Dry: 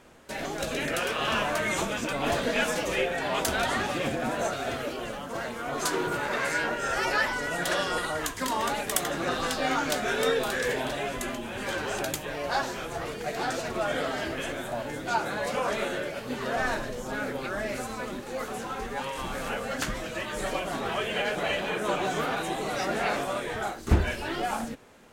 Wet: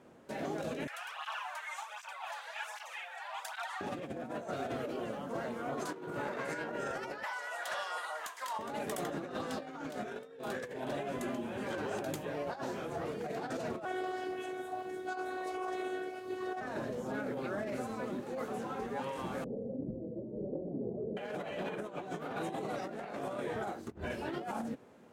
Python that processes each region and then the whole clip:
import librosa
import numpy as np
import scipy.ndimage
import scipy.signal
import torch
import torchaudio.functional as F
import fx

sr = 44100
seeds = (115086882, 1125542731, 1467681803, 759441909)

y = fx.chain(x, sr, fx.ellip_highpass(hz=820.0, order=4, stop_db=70),
    fx.flanger_cancel(hz=1.3, depth_ms=3.4), at=(0.87, 3.81))
y = fx.chain(y, sr, fx.highpass(hz=740.0, slope=24),
    fx.overload_stage(gain_db=21.5), at=(7.23, 8.59))
y = fx.chain(y, sr, fx.highpass(hz=96.0, slope=12),
    fx.robotise(hz=370.0), at=(13.85, 16.61))
y = fx.chain(y, sr, fx.steep_lowpass(hz=510.0, slope=36),
    fx.doppler_dist(depth_ms=0.16), at=(19.44, 21.17))
y = scipy.signal.sosfilt(scipy.signal.butter(2, 130.0, 'highpass', fs=sr, output='sos'), y)
y = fx.tilt_shelf(y, sr, db=6.5, hz=1100.0)
y = fx.over_compress(y, sr, threshold_db=-29.0, ratio=-0.5)
y = y * 10.0 ** (-8.5 / 20.0)